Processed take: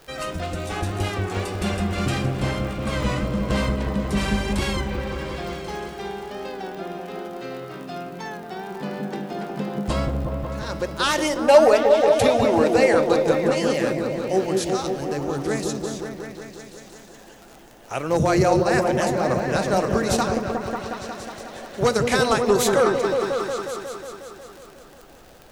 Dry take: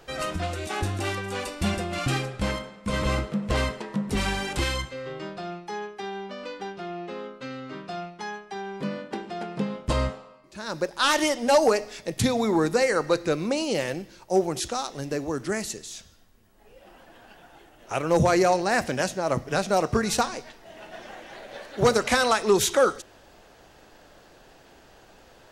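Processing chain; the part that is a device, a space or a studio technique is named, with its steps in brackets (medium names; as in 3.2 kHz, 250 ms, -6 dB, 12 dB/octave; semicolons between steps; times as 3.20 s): 11.47–12.99 s: fifteen-band graphic EQ 160 Hz -9 dB, 630 Hz +8 dB, 2.5 kHz +6 dB, 6.3 kHz -3 dB; warped LP (warped record 33 1/3 rpm, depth 100 cents; crackle 55 per s -33 dBFS; white noise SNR 37 dB); delay with an opening low-pass 181 ms, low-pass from 400 Hz, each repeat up 1 oct, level 0 dB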